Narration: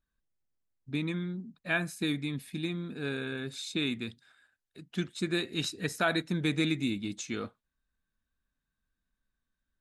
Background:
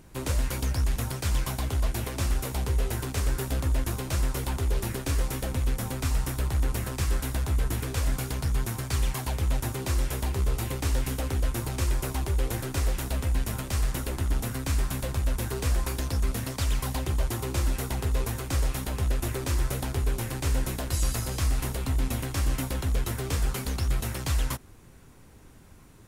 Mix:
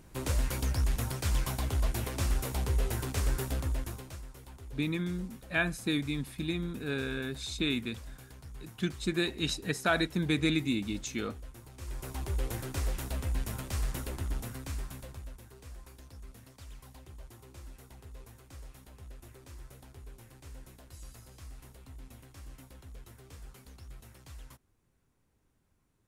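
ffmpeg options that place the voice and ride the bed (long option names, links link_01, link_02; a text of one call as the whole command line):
ffmpeg -i stem1.wav -i stem2.wav -filter_complex "[0:a]adelay=3850,volume=0.5dB[link_01];[1:a]volume=11dB,afade=type=out:start_time=3.37:duration=0.85:silence=0.141254,afade=type=in:start_time=11.76:duration=0.58:silence=0.199526,afade=type=out:start_time=14:duration=1.42:silence=0.158489[link_02];[link_01][link_02]amix=inputs=2:normalize=0" out.wav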